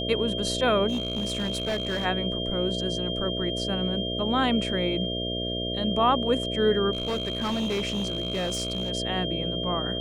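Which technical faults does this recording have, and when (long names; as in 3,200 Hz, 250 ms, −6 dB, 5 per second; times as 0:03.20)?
mains buzz 60 Hz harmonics 11 −32 dBFS
whistle 3,200 Hz −31 dBFS
0:00.88–0:02.06: clipping −23.5 dBFS
0:06.93–0:08.91: clipping −24 dBFS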